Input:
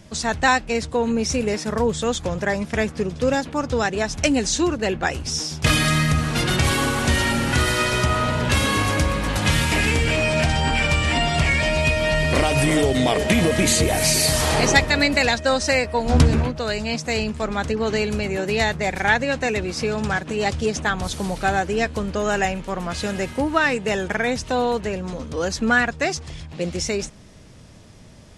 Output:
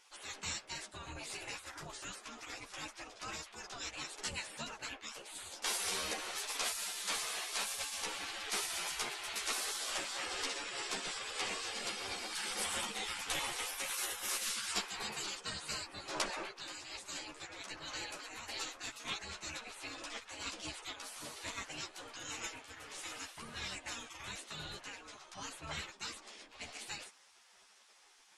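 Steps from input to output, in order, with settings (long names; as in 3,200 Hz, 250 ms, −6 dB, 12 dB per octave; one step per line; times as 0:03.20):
gate on every frequency bin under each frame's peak −20 dB weak
string-ensemble chorus
level −5.5 dB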